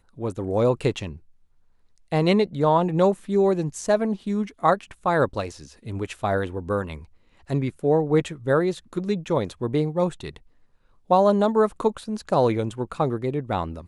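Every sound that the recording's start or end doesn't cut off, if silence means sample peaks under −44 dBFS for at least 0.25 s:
0:01.98–0:07.05
0:07.48–0:10.38

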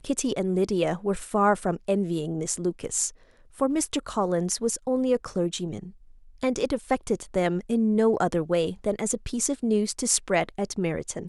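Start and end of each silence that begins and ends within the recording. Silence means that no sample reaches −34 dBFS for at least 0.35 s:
0:03.09–0:03.60
0:05.88–0:06.43

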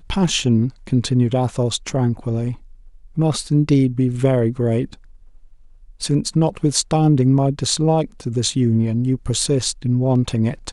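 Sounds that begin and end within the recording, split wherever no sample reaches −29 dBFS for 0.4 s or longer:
0:03.17–0:04.94

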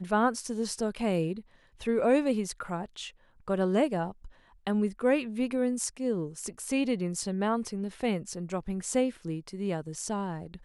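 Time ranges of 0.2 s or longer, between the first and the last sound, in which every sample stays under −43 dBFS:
0:01.41–0:01.81
0:03.10–0:03.48
0:04.27–0:04.67

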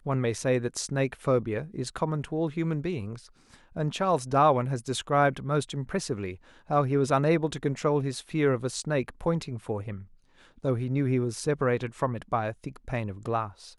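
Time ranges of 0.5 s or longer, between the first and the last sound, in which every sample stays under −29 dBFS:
0:03.13–0:03.77
0:09.94–0:10.65

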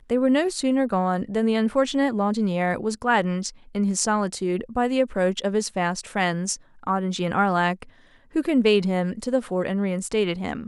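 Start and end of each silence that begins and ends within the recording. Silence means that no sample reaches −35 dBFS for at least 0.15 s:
0:03.50–0:03.75
0:06.56–0:06.83
0:07.83–0:08.35

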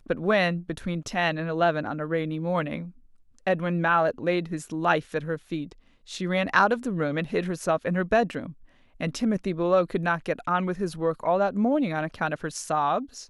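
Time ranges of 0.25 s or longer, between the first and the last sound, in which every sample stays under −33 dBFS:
0:02.86–0:03.47
0:05.72–0:06.10
0:08.50–0:09.01

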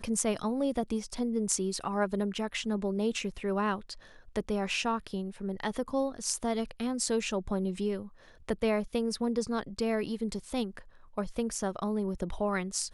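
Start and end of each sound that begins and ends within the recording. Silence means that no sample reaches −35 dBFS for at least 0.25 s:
0:04.36–0:08.03
0:08.49–0:10.79

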